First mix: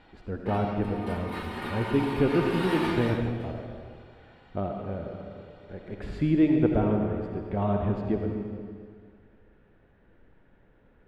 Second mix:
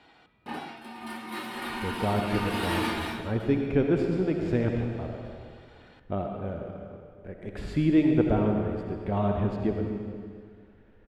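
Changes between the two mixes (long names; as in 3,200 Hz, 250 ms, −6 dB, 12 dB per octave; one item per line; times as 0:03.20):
speech: entry +1.55 s
master: add high-shelf EQ 4,300 Hz +9 dB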